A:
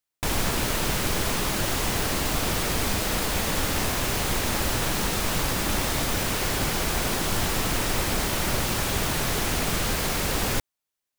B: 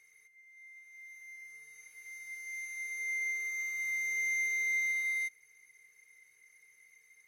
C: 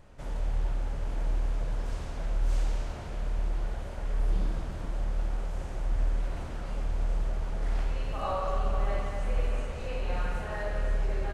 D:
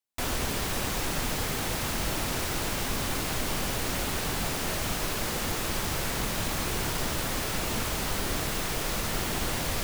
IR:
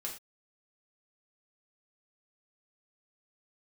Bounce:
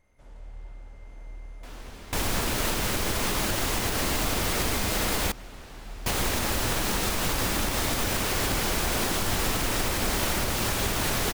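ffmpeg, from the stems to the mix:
-filter_complex "[0:a]adelay=1900,volume=1.5dB,asplit=3[a][b][c];[a]atrim=end=5.32,asetpts=PTS-STARTPTS,afade=t=out:st=5.316:d=0.004:c=hsin[d];[b]atrim=start=5.32:end=6.06,asetpts=PTS-STARTPTS,volume=0[e];[c]atrim=start=6.06,asetpts=PTS-STARTPTS,afade=t=in:d=0.004:c=hsin[f];[d][e][f]concat=n=3:v=0:a=1[g];[1:a]volume=-14dB[h];[2:a]volume=-13dB[i];[3:a]highshelf=f=7.5k:g=-10.5,adelay=1450,volume=-14.5dB[j];[g][h][i][j]amix=inputs=4:normalize=0,equalizer=f=150:w=7.1:g=-8,alimiter=limit=-16dB:level=0:latency=1:release=136"

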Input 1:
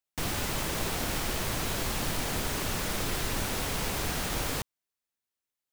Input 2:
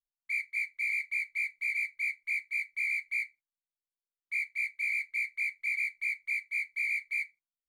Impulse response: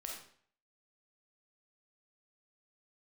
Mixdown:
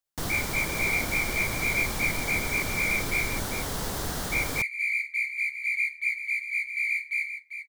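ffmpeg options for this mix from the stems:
-filter_complex "[0:a]equalizer=f=2.5k:w=2.7:g=-9.5,volume=0.5dB[a];[1:a]lowshelf=f=410:g=-8.5,volume=2dB,asplit=3[b][c][d];[c]volume=-7dB[e];[d]volume=-7.5dB[f];[2:a]atrim=start_sample=2205[g];[e][g]afir=irnorm=-1:irlink=0[h];[f]aecho=0:1:395:1[i];[a][b][h][i]amix=inputs=4:normalize=0"

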